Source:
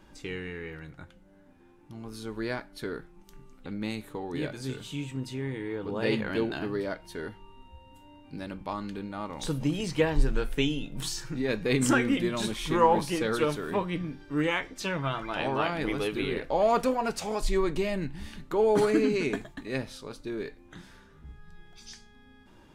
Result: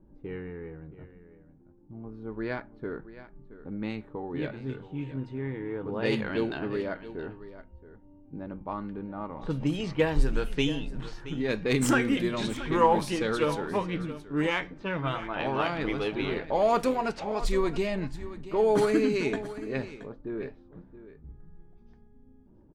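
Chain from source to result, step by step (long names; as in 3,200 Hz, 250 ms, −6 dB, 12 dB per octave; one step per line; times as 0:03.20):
stylus tracing distortion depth 0.038 ms
low-pass that shuts in the quiet parts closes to 380 Hz, open at −22.5 dBFS
single-tap delay 674 ms −15 dB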